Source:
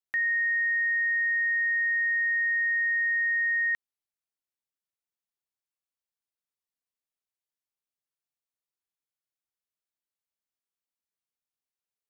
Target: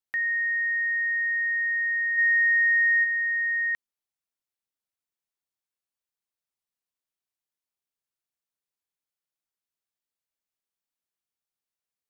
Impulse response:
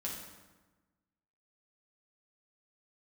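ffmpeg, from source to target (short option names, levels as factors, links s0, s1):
-filter_complex "[0:a]asplit=3[s0][s1][s2];[s0]afade=t=out:st=2.17:d=0.02[s3];[s1]acontrast=33,afade=t=in:st=2.17:d=0.02,afade=t=out:st=3.03:d=0.02[s4];[s2]afade=t=in:st=3.03:d=0.02[s5];[s3][s4][s5]amix=inputs=3:normalize=0"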